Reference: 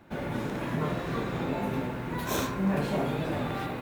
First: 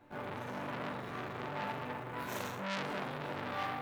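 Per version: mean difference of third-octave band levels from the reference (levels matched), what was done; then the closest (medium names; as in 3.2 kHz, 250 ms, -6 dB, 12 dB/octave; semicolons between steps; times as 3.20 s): 4.0 dB: peaking EQ 920 Hz +5.5 dB 1.9 oct; chord resonator G2 major, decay 0.65 s; transformer saturation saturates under 2.8 kHz; trim +10.5 dB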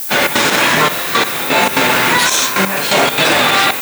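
11.0 dB: frequency weighting ITU-R 468; trance gate ".xx.xxxxxx...x.." 170 bpm -12 dB; added noise violet -49 dBFS; loudness maximiser +27 dB; trim -1 dB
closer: first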